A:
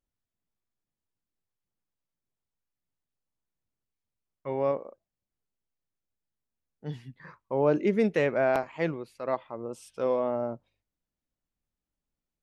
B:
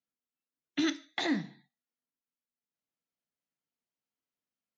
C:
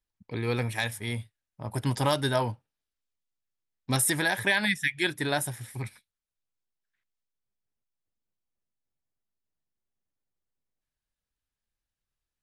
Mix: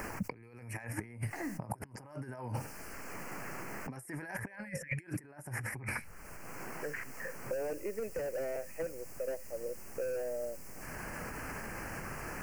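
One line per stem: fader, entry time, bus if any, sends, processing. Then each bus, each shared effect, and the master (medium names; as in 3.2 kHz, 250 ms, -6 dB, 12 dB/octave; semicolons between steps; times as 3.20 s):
-5.0 dB, 0.00 s, no send, vowel filter e; slew-rate limiter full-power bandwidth 11 Hz
-19.0 dB, 0.15 s, no send, none
-1.5 dB, 0.00 s, no send, level flattener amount 50%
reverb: none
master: compressor with a negative ratio -39 dBFS, ratio -0.5; Butterworth band-stop 3.6 kHz, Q 1.4; three bands compressed up and down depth 100%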